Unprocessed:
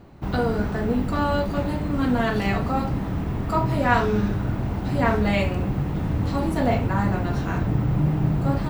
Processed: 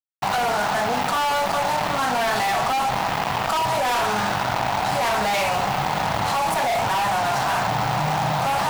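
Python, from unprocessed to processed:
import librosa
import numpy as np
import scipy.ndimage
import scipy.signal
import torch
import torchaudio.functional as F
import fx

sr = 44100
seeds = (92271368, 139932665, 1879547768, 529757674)

p1 = scipy.signal.sosfilt(scipy.signal.butter(4, 110.0, 'highpass', fs=sr, output='sos'), x)
p2 = fx.low_shelf_res(p1, sr, hz=520.0, db=-14.0, q=3.0)
p3 = fx.rider(p2, sr, range_db=10, speed_s=2.0)
p4 = p2 + (p3 * 10.0 ** (0.5 / 20.0))
p5 = fx.fuzz(p4, sr, gain_db=25.0, gate_db=-30.0)
p6 = fx.env_flatten(p5, sr, amount_pct=70)
y = p6 * 10.0 ** (-7.0 / 20.0)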